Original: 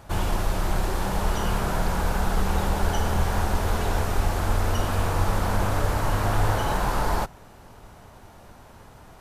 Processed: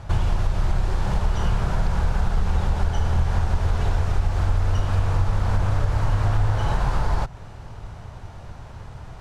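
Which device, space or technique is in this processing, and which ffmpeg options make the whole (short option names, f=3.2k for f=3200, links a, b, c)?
jukebox: -af "lowpass=6.5k,lowshelf=f=170:t=q:w=1.5:g=7.5,acompressor=threshold=-23dB:ratio=3,volume=4dB"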